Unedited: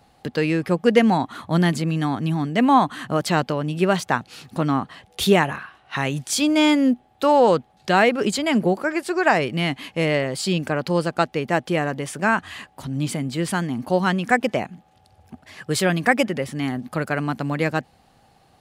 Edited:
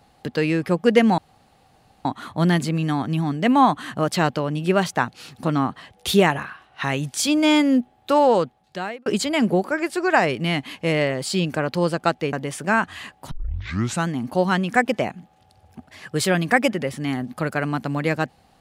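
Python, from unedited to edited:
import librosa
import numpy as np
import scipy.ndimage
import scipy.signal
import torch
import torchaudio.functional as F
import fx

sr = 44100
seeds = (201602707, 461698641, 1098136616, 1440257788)

y = fx.edit(x, sr, fx.insert_room_tone(at_s=1.18, length_s=0.87),
    fx.fade_out_span(start_s=7.3, length_s=0.89),
    fx.cut(start_s=11.46, length_s=0.42),
    fx.tape_start(start_s=12.86, length_s=0.76), tone=tone)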